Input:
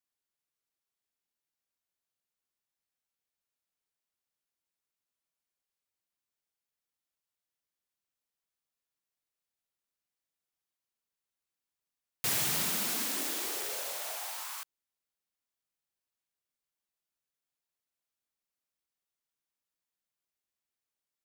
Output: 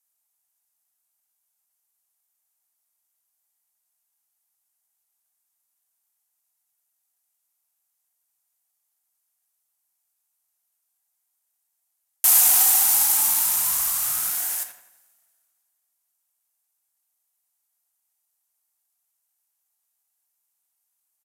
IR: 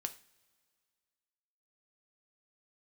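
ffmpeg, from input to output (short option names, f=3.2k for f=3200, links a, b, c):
-filter_complex "[0:a]asplit=2[a][b];[b]adelay=85,lowpass=f=2.4k:p=1,volume=-6.5dB,asplit=2[c][d];[d]adelay=85,lowpass=f=2.4k:p=1,volume=0.51,asplit=2[e][f];[f]adelay=85,lowpass=f=2.4k:p=1,volume=0.51,asplit=2[g][h];[h]adelay=85,lowpass=f=2.4k:p=1,volume=0.51,asplit=2[i][j];[j]adelay=85,lowpass=f=2.4k:p=1,volume=0.51,asplit=2[k][l];[l]adelay=85,lowpass=f=2.4k:p=1,volume=0.51[m];[a][c][e][g][i][k][m]amix=inputs=7:normalize=0[n];[1:a]atrim=start_sample=2205[o];[n][o]afir=irnorm=-1:irlink=0,aeval=exprs='val(0)*sin(2*PI*580*n/s)':c=same,lowshelf=f=590:t=q:w=3:g=-7,acrossover=split=5500[p][q];[q]crystalizer=i=4:c=0[r];[p][r]amix=inputs=2:normalize=0,aresample=32000,aresample=44100,volume=7dB"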